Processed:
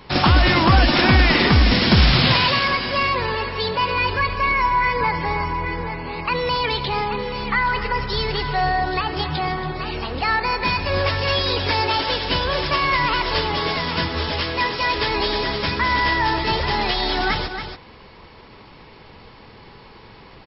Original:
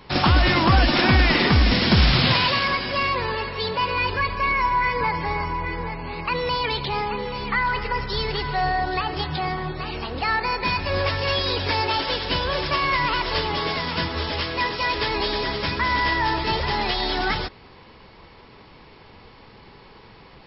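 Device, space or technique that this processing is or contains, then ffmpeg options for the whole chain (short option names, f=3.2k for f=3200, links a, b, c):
ducked delay: -filter_complex "[0:a]asplit=3[a][b][c];[b]adelay=279,volume=-8.5dB[d];[c]apad=whole_len=914632[e];[d][e]sidechaincompress=threshold=-33dB:ratio=8:attack=37:release=109[f];[a][f]amix=inputs=2:normalize=0,volume=2.5dB"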